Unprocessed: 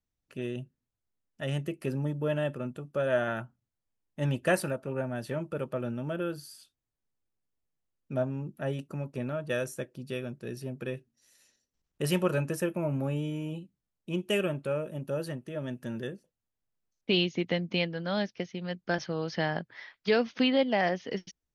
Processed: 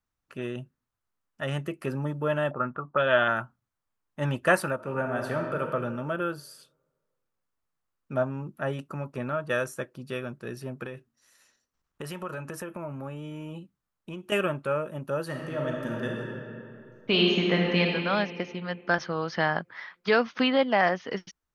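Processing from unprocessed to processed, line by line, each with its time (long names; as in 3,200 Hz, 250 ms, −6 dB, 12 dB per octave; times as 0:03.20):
0:02.51–0:03.28: envelope-controlled low-pass 620–3,300 Hz up, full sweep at −27 dBFS
0:04.75–0:05.72: thrown reverb, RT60 1.6 s, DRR 3 dB
0:10.84–0:14.32: downward compressor, threshold −35 dBFS
0:15.25–0:17.82: thrown reverb, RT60 2.6 s, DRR −1.5 dB
whole clip: parametric band 1,200 Hz +11.5 dB 1.2 octaves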